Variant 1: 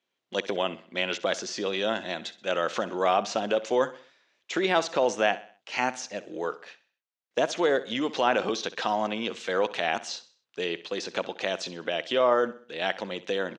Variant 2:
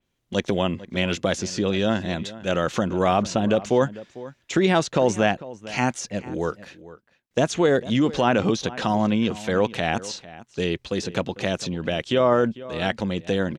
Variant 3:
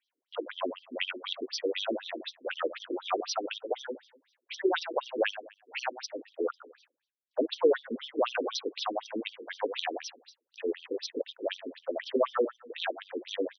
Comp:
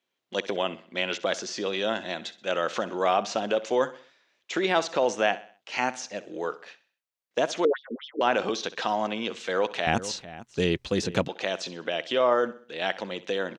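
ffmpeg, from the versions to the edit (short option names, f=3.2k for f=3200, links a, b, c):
-filter_complex "[0:a]asplit=3[a][b][c];[a]atrim=end=7.652[d];[2:a]atrim=start=7.648:end=8.212[e];[b]atrim=start=8.208:end=9.872[f];[1:a]atrim=start=9.868:end=11.282[g];[c]atrim=start=11.278[h];[d][e]acrossfade=d=0.004:c1=hsin:c2=hsin[i];[i][f]acrossfade=d=0.004:c1=hsin:c2=hsin[j];[j][g]acrossfade=d=0.004:c1=hsin:c2=hsin[k];[k][h]acrossfade=d=0.004:c1=hsin:c2=hsin"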